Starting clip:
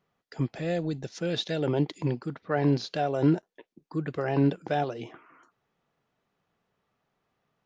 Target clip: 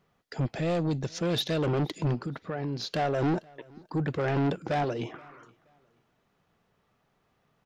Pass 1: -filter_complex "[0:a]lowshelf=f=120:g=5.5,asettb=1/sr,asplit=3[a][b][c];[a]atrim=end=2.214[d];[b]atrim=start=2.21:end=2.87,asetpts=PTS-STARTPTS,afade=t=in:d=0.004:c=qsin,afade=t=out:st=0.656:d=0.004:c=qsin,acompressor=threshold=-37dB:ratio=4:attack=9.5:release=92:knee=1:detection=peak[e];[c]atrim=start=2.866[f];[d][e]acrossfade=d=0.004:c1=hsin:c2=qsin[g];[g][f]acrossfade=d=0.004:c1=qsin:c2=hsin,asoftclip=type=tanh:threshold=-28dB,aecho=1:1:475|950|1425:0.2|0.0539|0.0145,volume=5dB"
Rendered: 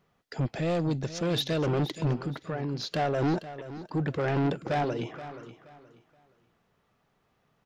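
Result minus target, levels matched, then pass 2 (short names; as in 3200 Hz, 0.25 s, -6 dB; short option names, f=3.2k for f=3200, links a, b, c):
echo-to-direct +12 dB
-filter_complex "[0:a]lowshelf=f=120:g=5.5,asettb=1/sr,asplit=3[a][b][c];[a]atrim=end=2.214[d];[b]atrim=start=2.21:end=2.87,asetpts=PTS-STARTPTS,afade=t=in:d=0.004:c=qsin,afade=t=out:st=0.656:d=0.004:c=qsin,acompressor=threshold=-37dB:ratio=4:attack=9.5:release=92:knee=1:detection=peak[e];[c]atrim=start=2.866[f];[d][e]acrossfade=d=0.004:c1=hsin:c2=qsin[g];[g][f]acrossfade=d=0.004:c1=qsin:c2=hsin,asoftclip=type=tanh:threshold=-28dB,aecho=1:1:475|950:0.0501|0.0135,volume=5dB"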